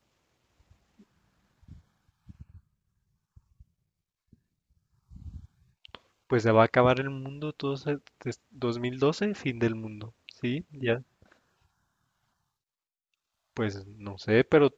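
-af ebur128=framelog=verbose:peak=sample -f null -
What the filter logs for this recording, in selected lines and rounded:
Integrated loudness:
  I:         -28.2 LUFS
  Threshold: -41.1 LUFS
Loudness range:
  LRA:        10.7 LU
  Threshold: -52.3 LUFS
  LRA low:   -38.5 LUFS
  LRA high:  -27.7 LUFS
Sample peak:
  Peak:       -5.9 dBFS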